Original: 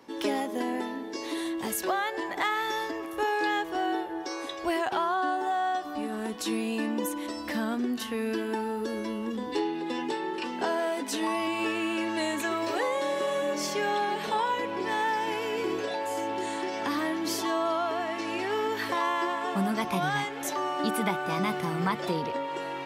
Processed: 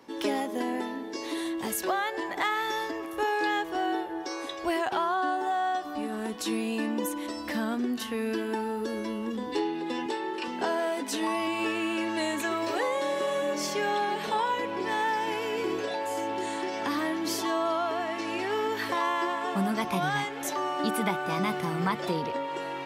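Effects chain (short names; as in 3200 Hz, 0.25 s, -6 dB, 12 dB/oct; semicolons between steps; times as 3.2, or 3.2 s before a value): 10.06–10.48 HPF 240 Hz 12 dB/oct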